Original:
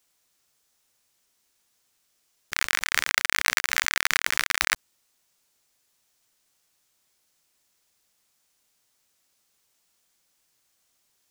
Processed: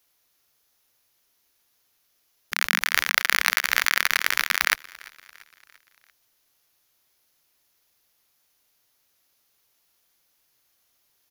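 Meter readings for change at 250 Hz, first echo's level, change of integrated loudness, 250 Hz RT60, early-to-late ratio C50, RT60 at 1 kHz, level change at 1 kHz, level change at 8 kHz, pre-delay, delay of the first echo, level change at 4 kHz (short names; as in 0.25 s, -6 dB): +0.5 dB, -22.5 dB, +2.0 dB, none, none, none, +2.0 dB, -1.0 dB, none, 0.342 s, +1.5 dB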